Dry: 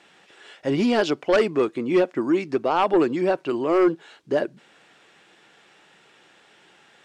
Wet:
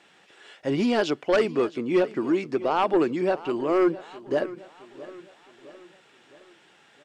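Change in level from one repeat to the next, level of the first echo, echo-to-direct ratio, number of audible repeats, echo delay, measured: -6.0 dB, -17.5 dB, -16.5 dB, 3, 663 ms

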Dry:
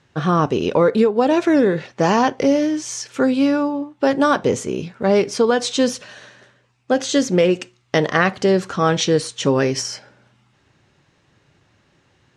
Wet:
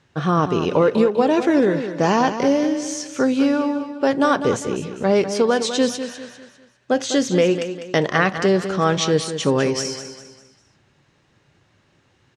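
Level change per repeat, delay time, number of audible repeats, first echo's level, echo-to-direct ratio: -8.0 dB, 200 ms, 4, -10.0 dB, -9.5 dB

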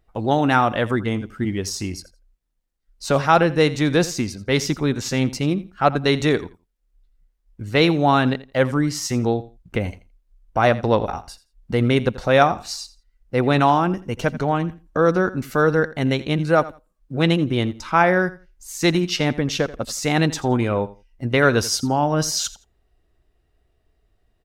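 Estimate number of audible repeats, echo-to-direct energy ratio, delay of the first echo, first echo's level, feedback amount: 2, -17.5 dB, 84 ms, -17.5 dB, 18%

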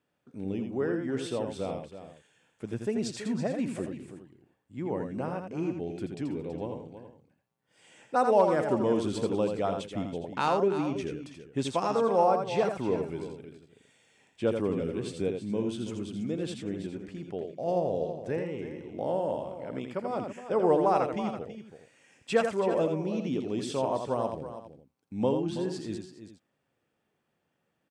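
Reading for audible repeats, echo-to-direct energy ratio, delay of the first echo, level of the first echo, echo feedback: 3, -4.5 dB, 83 ms, -6.0 dB, no regular repeats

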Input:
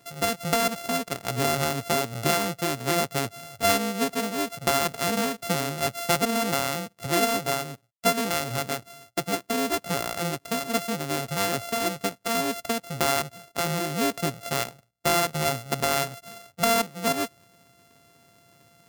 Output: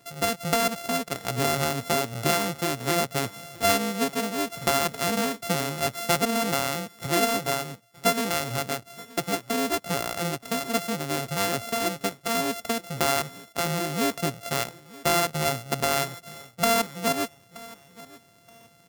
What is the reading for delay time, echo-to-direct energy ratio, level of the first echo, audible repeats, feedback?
925 ms, -20.0 dB, -20.5 dB, 2, 28%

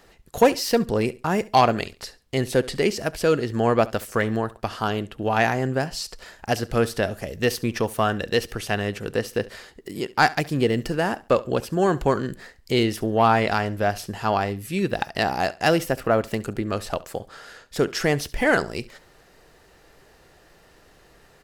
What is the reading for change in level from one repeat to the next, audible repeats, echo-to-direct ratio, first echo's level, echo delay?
-12.0 dB, 2, -19.0 dB, -19.5 dB, 69 ms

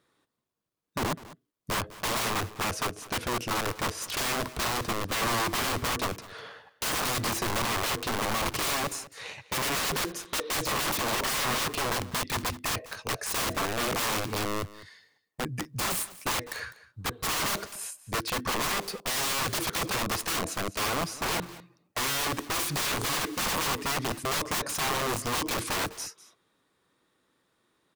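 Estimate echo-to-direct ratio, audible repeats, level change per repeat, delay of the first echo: -18.0 dB, 1, no regular repeats, 202 ms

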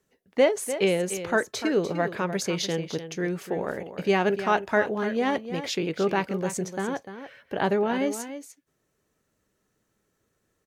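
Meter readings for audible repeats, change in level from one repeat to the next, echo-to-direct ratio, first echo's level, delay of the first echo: 1, no regular repeats, -11.0 dB, -11.0 dB, 297 ms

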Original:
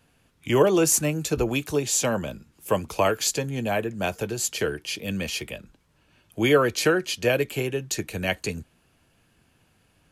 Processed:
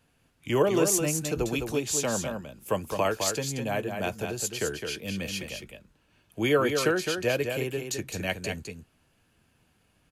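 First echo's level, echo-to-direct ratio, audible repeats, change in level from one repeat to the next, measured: -6.0 dB, -6.0 dB, 1, no regular repeats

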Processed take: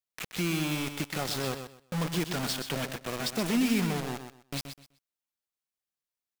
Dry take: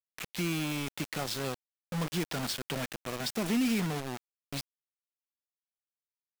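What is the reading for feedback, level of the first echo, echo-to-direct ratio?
22%, -8.5 dB, -8.5 dB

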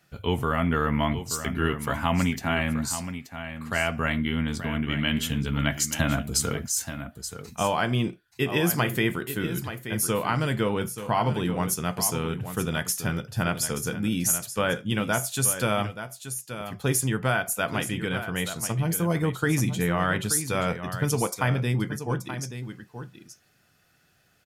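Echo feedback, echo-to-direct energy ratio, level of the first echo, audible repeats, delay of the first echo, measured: no regular repeats, -10.5 dB, -10.5 dB, 1, 879 ms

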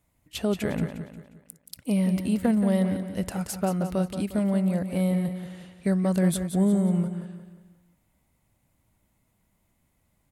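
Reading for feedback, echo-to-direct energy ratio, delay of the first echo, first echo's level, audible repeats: 42%, -8.0 dB, 178 ms, -9.0 dB, 4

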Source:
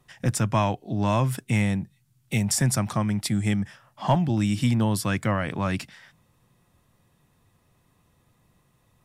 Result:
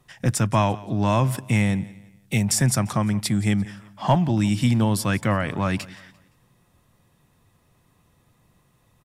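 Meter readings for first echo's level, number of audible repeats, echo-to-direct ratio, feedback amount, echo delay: -20.0 dB, 2, -19.5 dB, 36%, 173 ms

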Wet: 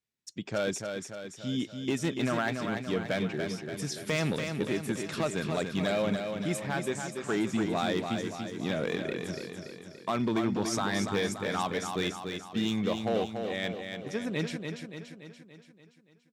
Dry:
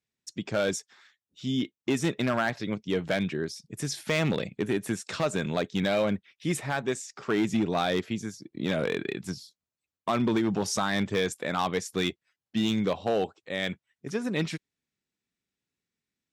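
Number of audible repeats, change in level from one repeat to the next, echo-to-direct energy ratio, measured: 6, -5.0 dB, -4.5 dB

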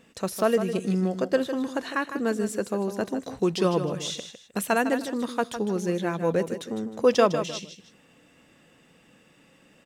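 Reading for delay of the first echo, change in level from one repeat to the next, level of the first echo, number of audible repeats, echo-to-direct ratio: 155 ms, -10.5 dB, -10.0 dB, 2, -9.5 dB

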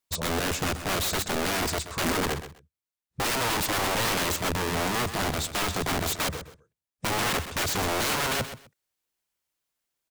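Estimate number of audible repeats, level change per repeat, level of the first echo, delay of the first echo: 2, -14.5 dB, -11.5 dB, 128 ms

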